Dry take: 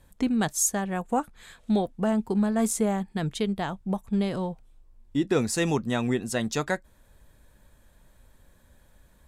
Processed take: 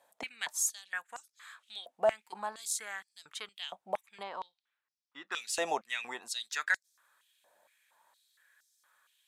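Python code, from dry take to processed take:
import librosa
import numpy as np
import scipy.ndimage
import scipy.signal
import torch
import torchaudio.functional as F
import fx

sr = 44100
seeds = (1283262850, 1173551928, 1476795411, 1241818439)

y = fx.air_absorb(x, sr, metres=180.0, at=(4.23, 5.32))
y = fx.filter_held_highpass(y, sr, hz=4.3, low_hz=680.0, high_hz=5400.0)
y = y * 10.0 ** (-6.5 / 20.0)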